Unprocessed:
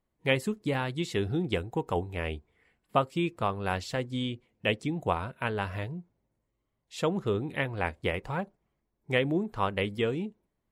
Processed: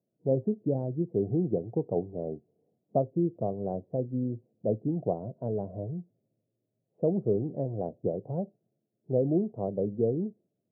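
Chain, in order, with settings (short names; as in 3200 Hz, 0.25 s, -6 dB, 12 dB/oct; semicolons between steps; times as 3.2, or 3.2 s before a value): Chebyshev band-pass 110–670 Hz, order 4; gain +2.5 dB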